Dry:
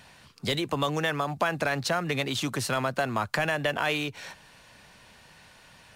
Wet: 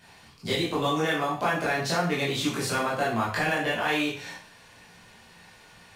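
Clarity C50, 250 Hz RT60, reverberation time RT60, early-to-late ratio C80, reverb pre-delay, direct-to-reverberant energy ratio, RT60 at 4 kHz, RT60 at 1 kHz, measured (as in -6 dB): 4.5 dB, 0.50 s, 0.45 s, 9.0 dB, 7 ms, -8.0 dB, 0.45 s, 0.50 s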